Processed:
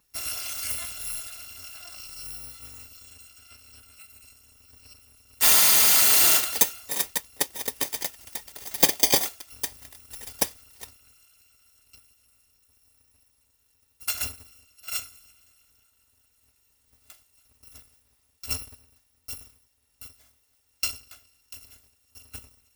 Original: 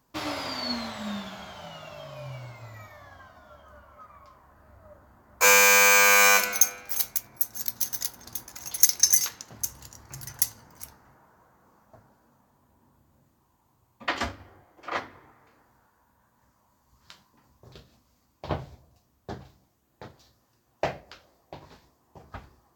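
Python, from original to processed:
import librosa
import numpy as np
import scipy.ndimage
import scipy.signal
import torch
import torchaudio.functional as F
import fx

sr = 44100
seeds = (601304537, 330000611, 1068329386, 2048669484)

y = fx.bit_reversed(x, sr, seeds[0], block=256)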